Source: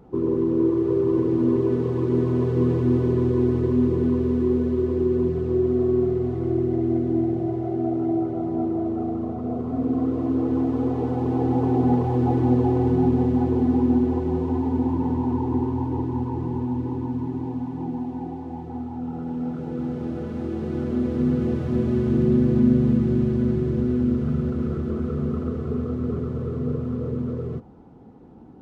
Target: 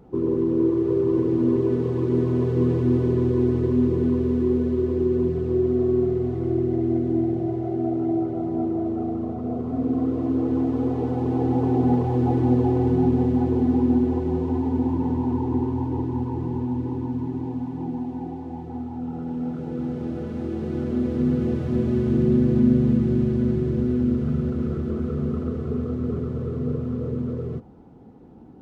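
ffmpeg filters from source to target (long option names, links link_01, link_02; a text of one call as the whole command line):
ffmpeg -i in.wav -af "equalizer=frequency=1100:width=1.5:gain=-2.5" out.wav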